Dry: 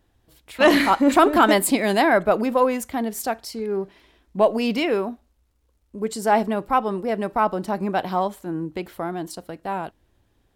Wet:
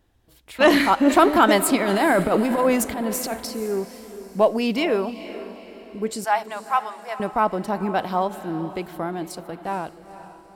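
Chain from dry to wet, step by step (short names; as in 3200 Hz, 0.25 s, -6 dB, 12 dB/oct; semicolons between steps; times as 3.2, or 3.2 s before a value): 1.8–3.48 transient shaper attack -12 dB, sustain +9 dB; 6.24–7.2 HPF 750 Hz 24 dB/oct; diffused feedback echo 0.46 s, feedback 44%, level -13.5 dB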